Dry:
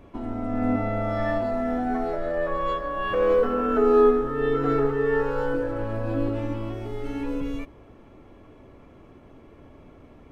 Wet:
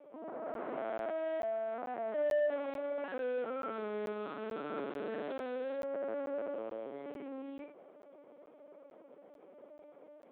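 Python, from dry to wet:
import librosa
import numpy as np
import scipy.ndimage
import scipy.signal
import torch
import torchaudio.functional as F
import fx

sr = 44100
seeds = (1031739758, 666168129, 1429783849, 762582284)

y = fx.delta_mod(x, sr, bps=32000, step_db=-25.0, at=(3.73, 5.77))
y = fx.peak_eq(y, sr, hz=590.0, db=13.5, octaves=0.3)
y = 10.0 ** (-24.0 / 20.0) * np.tanh(y / 10.0 ** (-24.0 / 20.0))
y = fx.room_early_taps(y, sr, ms=(39, 74), db=(-9.0, -10.0))
y = fx.lpc_vocoder(y, sr, seeds[0], excitation='pitch_kept', order=8)
y = scipy.signal.sosfilt(scipy.signal.butter(4, 250.0, 'highpass', fs=sr, output='sos'), y)
y = fx.high_shelf(y, sr, hz=2400.0, db=-8.5)
y = fx.buffer_crackle(y, sr, first_s=0.54, period_s=0.44, block=512, kind='zero')
y = fx.upward_expand(y, sr, threshold_db=-27.0, expansion=1.5)
y = y * 10.0 ** (-6.5 / 20.0)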